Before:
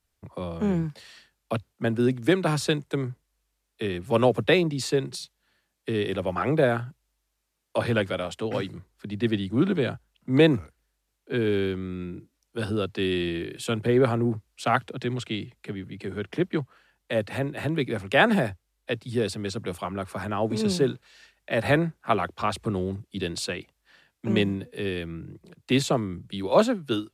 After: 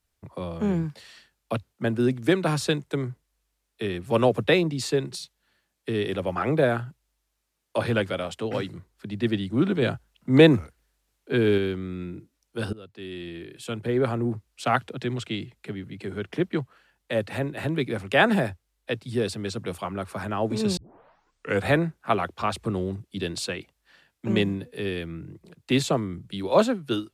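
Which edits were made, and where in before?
0:09.82–0:11.58: clip gain +3.5 dB
0:12.73–0:14.63: fade in linear, from −20 dB
0:20.77: tape start 0.93 s

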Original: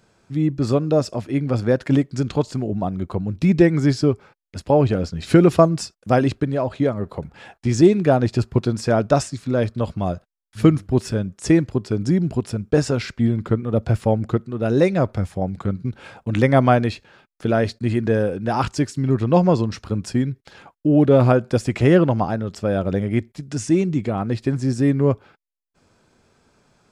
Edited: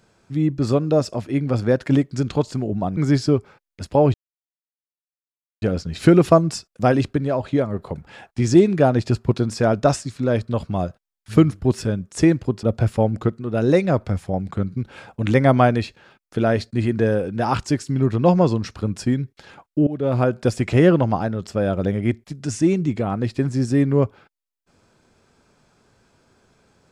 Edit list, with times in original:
0:02.97–0:03.72: remove
0:04.89: splice in silence 1.48 s
0:11.90–0:13.71: remove
0:20.95–0:21.52: fade in, from −19 dB

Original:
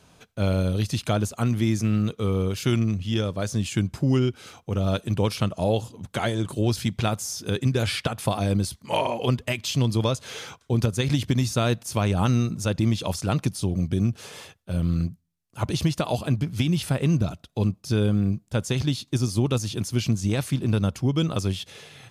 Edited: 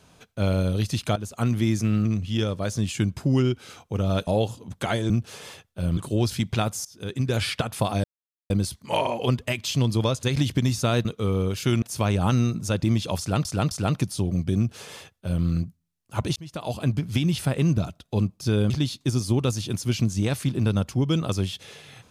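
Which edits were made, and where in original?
0:01.16–0:01.43: fade in, from −15.5 dB
0:02.05–0:02.82: move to 0:11.78
0:05.04–0:05.60: remove
0:07.31–0:07.84: fade in, from −22 dB
0:08.50: splice in silence 0.46 s
0:10.23–0:10.96: remove
0:13.15–0:13.41: repeat, 3 plays
0:14.01–0:14.88: duplicate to 0:06.43
0:15.80–0:16.33: fade in
0:18.14–0:18.77: remove

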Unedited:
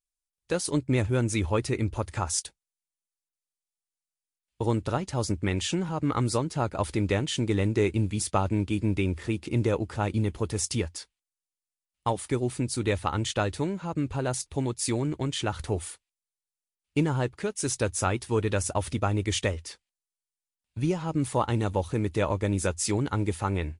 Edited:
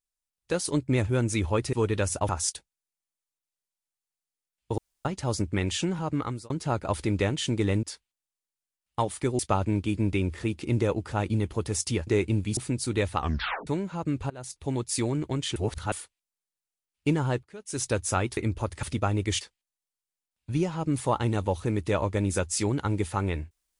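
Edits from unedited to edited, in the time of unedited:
0:01.73–0:02.19: swap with 0:18.27–0:18.83
0:04.68–0:04.95: fill with room tone
0:05.99–0:06.40: fade out
0:07.73–0:08.23: swap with 0:10.91–0:12.47
0:13.08: tape stop 0.49 s
0:14.20–0:14.67: fade in, from −24 dB
0:15.46–0:15.82: reverse
0:17.33–0:17.74: fade in quadratic, from −18 dB
0:19.41–0:19.69: remove

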